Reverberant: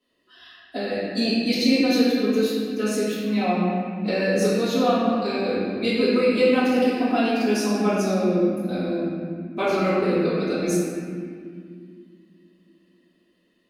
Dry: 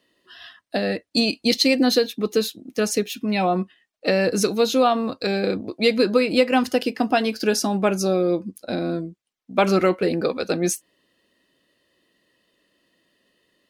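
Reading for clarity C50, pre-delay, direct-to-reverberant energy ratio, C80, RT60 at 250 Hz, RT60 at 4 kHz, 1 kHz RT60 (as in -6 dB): -2.5 dB, 3 ms, -14.0 dB, -0.5 dB, 3.9 s, 1.5 s, 1.9 s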